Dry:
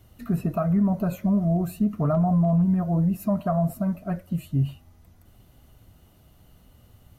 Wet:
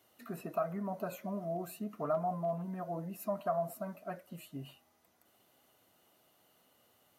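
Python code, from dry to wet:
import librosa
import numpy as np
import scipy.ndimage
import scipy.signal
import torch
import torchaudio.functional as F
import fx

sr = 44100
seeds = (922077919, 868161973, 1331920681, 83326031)

y = scipy.signal.sosfilt(scipy.signal.butter(2, 420.0, 'highpass', fs=sr, output='sos'), x)
y = y * 10.0 ** (-5.5 / 20.0)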